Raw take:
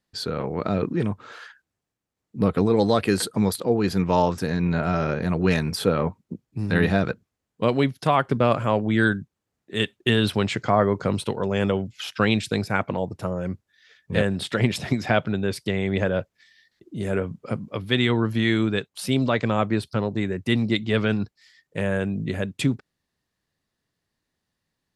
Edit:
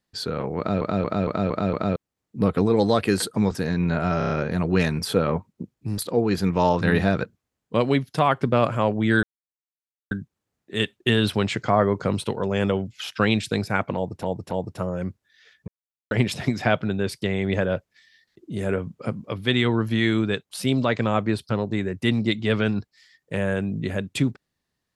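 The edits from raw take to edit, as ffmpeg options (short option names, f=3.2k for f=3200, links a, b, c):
-filter_complex "[0:a]asplit=19[a][b][c][d][e][f][g][h][i][j][k][l][m][n][o][p][q][r][s];[a]atrim=end=0.812[t];[b]atrim=start=0.578:end=0.812[u];[c]atrim=start=0.578:end=0.812[v];[d]atrim=start=0.578:end=0.812[w];[e]atrim=start=0.578:end=0.812[x];[f]atrim=start=0.578:end=0.812[y];[g]atrim=start=1.958:end=3.512[z];[h]atrim=start=4.338:end=5.042[aa];[i]atrim=start=5.008:end=5.042[ab];[j]atrim=start=5.008:end=5.042[ac];[k]atrim=start=5.008:end=5.042[ad];[l]atrim=start=5.008:end=6.692[ae];[m]atrim=start=3.508:end=4.342[af];[n]atrim=start=6.688:end=9.11,asetpts=PTS-STARTPTS,afade=t=out:st=2.418:d=0.004:c=hsin,apad=pad_dur=0.88[ag];[o]atrim=start=9.11:end=13.232,asetpts=PTS-STARTPTS,afade=t=in:d=0.004:c=hsin[ah];[p]atrim=start=12.948:end=13.232[ai];[q]atrim=start=12.948:end=14.12,asetpts=PTS-STARTPTS,afade=t=out:st=1.168:d=0.004:c=hsin[aj];[r]atrim=start=14.12:end=14.55,asetpts=PTS-STARTPTS,volume=0[ak];[s]atrim=start=14.55,asetpts=PTS-STARTPTS,afade=t=in:d=0.004:c=hsin[al];[t][u]acrossfade=d=0.004:c1=hsin:c2=hsin[am];[am][v]acrossfade=d=0.004:c1=hsin:c2=hsin[an];[an][w]acrossfade=d=0.004:c1=hsin:c2=hsin[ao];[ao][x]acrossfade=d=0.004:c1=hsin:c2=hsin[ap];[ap][y]acrossfade=d=0.004:c1=hsin:c2=hsin[aq];[aq][z]acrossfade=d=0.004:c1=hsin:c2=hsin[ar];[ar][aa]acrossfade=d=0.004:c1=hsin:c2=hsin[as];[as][ab]acrossfade=d=0.004:c1=hsin:c2=hsin[at];[at][ac]acrossfade=d=0.004:c1=hsin:c2=hsin[au];[au][ad]acrossfade=d=0.004:c1=hsin:c2=hsin[av];[av][ae]acrossfade=d=0.004:c1=hsin:c2=hsin[aw];[aw][af]acrossfade=d=0.004:c1=hsin:c2=hsin[ax];[ag][ah]concat=n=2:v=0:a=1[ay];[ax][ay]acrossfade=d=0.004:c1=hsin:c2=hsin[az];[az][ai]acrossfade=d=0.004:c1=hsin:c2=hsin[ba];[aj][ak][al]concat=n=3:v=0:a=1[bb];[ba][bb]acrossfade=d=0.004:c1=hsin:c2=hsin"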